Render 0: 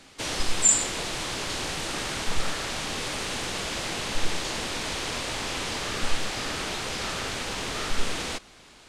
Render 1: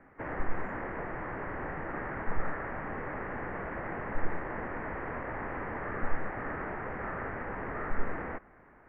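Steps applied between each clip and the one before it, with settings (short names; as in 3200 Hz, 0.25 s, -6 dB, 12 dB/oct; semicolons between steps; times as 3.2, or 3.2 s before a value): elliptic low-pass 1900 Hz, stop band 50 dB; gain -2.5 dB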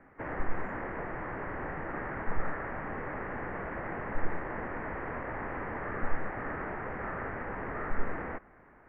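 nothing audible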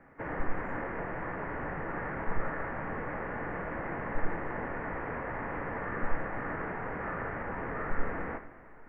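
two-slope reverb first 0.56 s, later 3.1 s, from -14 dB, DRR 6.5 dB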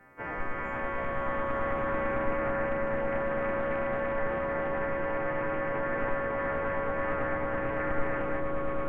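frequency quantiser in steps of 2 st; swelling echo 0.11 s, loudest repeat 8, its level -5.5 dB; Doppler distortion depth 0.24 ms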